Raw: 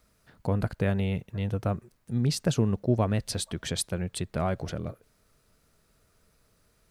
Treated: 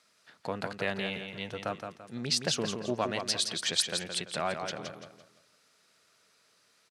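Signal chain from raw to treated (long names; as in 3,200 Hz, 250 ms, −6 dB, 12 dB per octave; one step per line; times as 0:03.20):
band-pass filter 140–4,800 Hz
spectral tilt +4 dB per octave
repeating echo 169 ms, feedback 34%, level −6.5 dB
highs frequency-modulated by the lows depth 0.11 ms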